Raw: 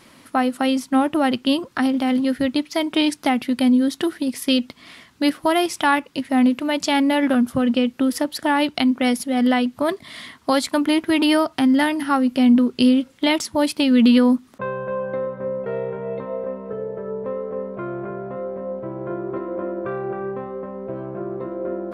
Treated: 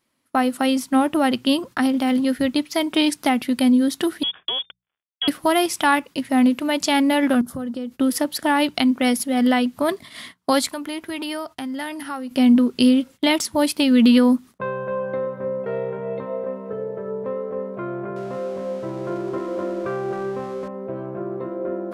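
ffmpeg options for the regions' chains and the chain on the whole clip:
ffmpeg -i in.wav -filter_complex "[0:a]asettb=1/sr,asplit=3[link_01][link_02][link_03];[link_01]atrim=end=4.234[link_04];[link_02]atrim=start=4.23:end=5.28,asetpts=PTS-STARTPTS,afade=type=in:duration=0.004:curve=qsin,afade=type=out:start_time=1.046:duration=0.004:curve=qsin,acompressor=threshold=-19dB:ratio=6:attack=3.2:release=140:knee=1:detection=peak,aeval=exprs='sgn(val(0))*max(abs(val(0))-0.0133,0)':channel_layout=same,lowpass=frequency=3100:width_type=q:width=0.5098,lowpass=frequency=3100:width_type=q:width=0.6013,lowpass=frequency=3100:width_type=q:width=0.9,lowpass=frequency=3100:width_type=q:width=2.563,afreqshift=-3600[link_05];[link_03]atrim=start=5.276[link_06];[link_04][link_05]acrossfade=duration=0.004:curve1=hsin:curve2=qsin[link_07];[link_07][link_06]acrossfade=duration=0.004:curve1=qsin:curve2=hsin,asettb=1/sr,asplit=3[link_08][link_09][link_10];[link_08]atrim=end=7.414[link_11];[link_09]atrim=start=7.41:end=7.92,asetpts=PTS-STARTPTS,afade=type=in:duration=0.004:curve=qsin,afade=type=out:start_time=0.506:duration=0.004:curve=qsin,equalizer=frequency=2600:width=1.9:gain=-12,acompressor=threshold=-28dB:ratio=3:attack=3.2:release=140:knee=1:detection=peak[link_12];[link_10]atrim=start=7.916[link_13];[link_11][link_12]acrossfade=duration=0.004:curve1=hsin:curve2=qsin[link_14];[link_14][link_13]acrossfade=duration=0.004:curve1=qsin:curve2=hsin,asettb=1/sr,asplit=3[link_15][link_16][link_17];[link_15]atrim=end=10.694[link_18];[link_16]atrim=start=10.69:end=12.31,asetpts=PTS-STARTPTS,afade=type=in:duration=0.004:curve=qsin,afade=type=out:start_time=1.616:duration=0.004:curve=qsin,equalizer=frequency=220:width_type=o:width=1.2:gain=-5.5,acompressor=threshold=-33dB:ratio=2:attack=3.2:release=140:knee=1:detection=peak[link_19];[link_17]atrim=start=12.306[link_20];[link_18][link_19]acrossfade=duration=0.004:curve1=hsin:curve2=qsin[link_21];[link_21][link_20]acrossfade=duration=0.004:curve1=qsin:curve2=hsin,asettb=1/sr,asplit=3[link_22][link_23][link_24];[link_22]atrim=end=18.164[link_25];[link_23]atrim=start=18.16:end=20.68,asetpts=PTS-STARTPTS,afade=type=in:duration=0.004:curve=qsin,afade=type=out:start_time=2.516:duration=0.004:curve=qsin,aeval=exprs='val(0)+0.5*0.0112*sgn(val(0))':channel_layout=same,lowpass=7000[link_26];[link_24]atrim=start=20.676[link_27];[link_25][link_26]acrossfade=duration=0.004:curve1=hsin:curve2=qsin[link_28];[link_28][link_27]acrossfade=duration=0.004:curve1=qsin:curve2=hsin,agate=range=-24dB:threshold=-37dB:ratio=16:detection=peak,highshelf=frequency=10000:gain=9.5,bandreject=frequency=60:width_type=h:width=6,bandreject=frequency=120:width_type=h:width=6,bandreject=frequency=180:width_type=h:width=6" out.wav

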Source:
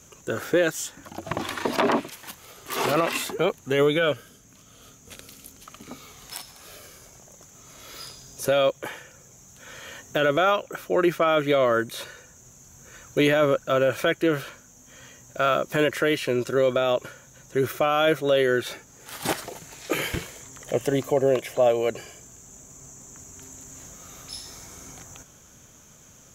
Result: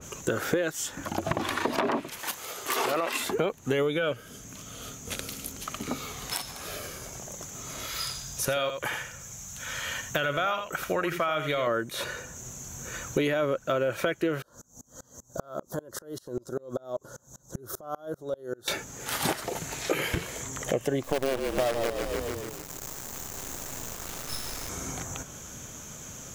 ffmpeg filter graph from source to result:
ffmpeg -i in.wav -filter_complex "[0:a]asettb=1/sr,asplit=3[link_01][link_02][link_03];[link_01]atrim=end=2.194[link_04];[link_02]atrim=start=2.19:end=3.2,asetpts=PTS-STARTPTS,afade=type=in:duration=0.004:curve=qsin,afade=type=out:start_time=1.006:duration=0.004:curve=qsin,highpass=54,bass=frequency=250:gain=-12,treble=frequency=4000:gain=3[link_05];[link_03]atrim=start=3.196[link_06];[link_04][link_05]acrossfade=duration=0.004:curve1=hsin:curve2=qsin[link_07];[link_07][link_06]acrossfade=duration=0.004:curve1=qsin:curve2=hsin,asettb=1/sr,asplit=3[link_08][link_09][link_10];[link_08]atrim=end=7.864[link_11];[link_09]atrim=start=7.86:end=11.67,asetpts=PTS-STARTPTS,afade=type=in:duration=0.004:curve=qsin,afade=type=out:start_time=3.806:duration=0.004:curve=qsin,equalizer=frequency=370:width_type=o:width=1.9:gain=-11,aecho=1:1:83:0.335,atrim=end_sample=168021[link_12];[link_10]atrim=start=11.666[link_13];[link_11][link_12]acrossfade=duration=0.004:curve1=hsin:curve2=qsin[link_14];[link_14][link_13]acrossfade=duration=0.004:curve1=qsin:curve2=hsin,asettb=1/sr,asplit=3[link_15][link_16][link_17];[link_15]atrim=end=14.424[link_18];[link_16]atrim=start=14.42:end=18.68,asetpts=PTS-STARTPTS,afade=type=in:duration=0.004:curve=qsin,afade=type=out:start_time=4.256:duration=0.004:curve=qsin,acompressor=threshold=-31dB:ratio=12:attack=3.2:release=140:knee=1:detection=peak,asuperstop=centerf=2400:order=4:qfactor=0.7,aeval=exprs='val(0)*pow(10,-31*if(lt(mod(-5.1*n/s,1),2*abs(-5.1)/1000),1-mod(-5.1*n/s,1)/(2*abs(-5.1)/1000),(mod(-5.1*n/s,1)-2*abs(-5.1)/1000)/(1-2*abs(-5.1)/1000))/20)':channel_layout=same[link_19];[link_17]atrim=start=18.676[link_20];[link_18][link_19]acrossfade=duration=0.004:curve1=hsin:curve2=qsin[link_21];[link_21][link_20]acrossfade=duration=0.004:curve1=qsin:curve2=hsin,asettb=1/sr,asplit=3[link_22][link_23][link_24];[link_22]atrim=end=21.034[link_25];[link_23]atrim=start=21.03:end=24.69,asetpts=PTS-STARTPTS,afade=type=in:duration=0.004:curve=qsin,afade=type=out:start_time=3.656:duration=0.004:curve=qsin,acrusher=bits=4:dc=4:mix=0:aa=0.000001,asplit=7[link_26][link_27][link_28][link_29][link_30][link_31][link_32];[link_27]adelay=148,afreqshift=-32,volume=-8.5dB[link_33];[link_28]adelay=296,afreqshift=-64,volume=-14.3dB[link_34];[link_29]adelay=444,afreqshift=-96,volume=-20.2dB[link_35];[link_30]adelay=592,afreqshift=-128,volume=-26dB[link_36];[link_31]adelay=740,afreqshift=-160,volume=-31.9dB[link_37];[link_32]adelay=888,afreqshift=-192,volume=-37.7dB[link_38];[link_26][link_33][link_34][link_35][link_36][link_37][link_38]amix=inputs=7:normalize=0,atrim=end_sample=161406[link_39];[link_24]atrim=start=24.686[link_40];[link_25][link_39]acrossfade=duration=0.004:curve1=hsin:curve2=qsin[link_41];[link_41][link_40]acrossfade=duration=0.004:curve1=qsin:curve2=hsin,acompressor=threshold=-34dB:ratio=6,adynamicequalizer=threshold=0.00224:dfrequency=2300:dqfactor=0.7:tfrequency=2300:tqfactor=0.7:attack=5:release=100:ratio=0.375:range=1.5:mode=cutabove:tftype=highshelf,volume=9dB" out.wav

